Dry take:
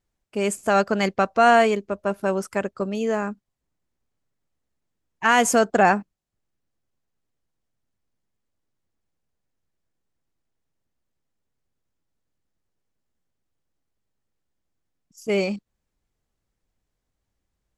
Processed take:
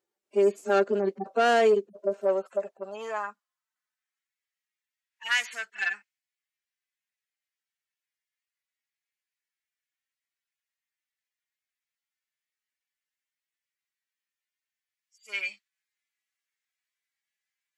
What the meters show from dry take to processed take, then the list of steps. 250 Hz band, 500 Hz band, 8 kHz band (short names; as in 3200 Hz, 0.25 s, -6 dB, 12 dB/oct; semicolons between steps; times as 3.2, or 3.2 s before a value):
-11.0 dB, -3.5 dB, -14.0 dB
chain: median-filter separation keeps harmonic; dynamic EQ 800 Hz, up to -6 dB, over -31 dBFS, Q 0.89; soft clip -18.5 dBFS, distortion -13 dB; high-pass sweep 370 Hz -> 2000 Hz, 1.76–4.32